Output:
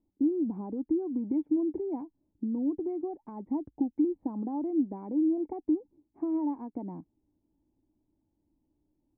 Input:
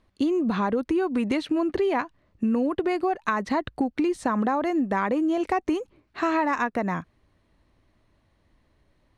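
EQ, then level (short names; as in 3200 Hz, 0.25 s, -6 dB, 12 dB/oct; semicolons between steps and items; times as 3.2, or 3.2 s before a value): vocal tract filter u; air absorption 220 m; 0.0 dB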